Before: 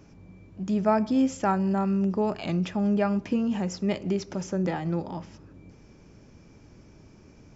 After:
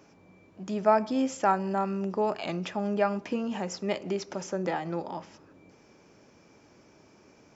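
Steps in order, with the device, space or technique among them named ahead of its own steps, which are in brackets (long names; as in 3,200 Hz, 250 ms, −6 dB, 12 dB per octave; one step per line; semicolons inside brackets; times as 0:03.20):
filter by subtraction (in parallel: low-pass filter 680 Hz 12 dB per octave + polarity inversion)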